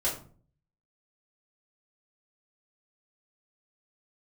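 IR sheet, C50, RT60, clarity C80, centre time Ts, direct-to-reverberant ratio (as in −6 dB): 8.0 dB, 0.45 s, 12.0 dB, 26 ms, −8.5 dB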